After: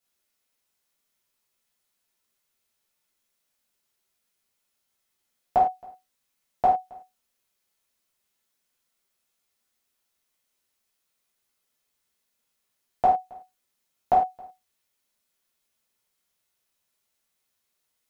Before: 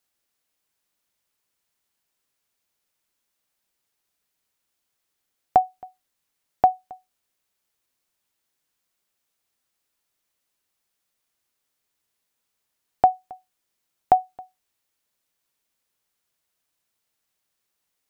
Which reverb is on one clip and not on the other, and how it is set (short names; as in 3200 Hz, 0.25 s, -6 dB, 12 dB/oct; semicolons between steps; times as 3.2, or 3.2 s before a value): non-linear reverb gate 0.13 s falling, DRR -7.5 dB; gain -8 dB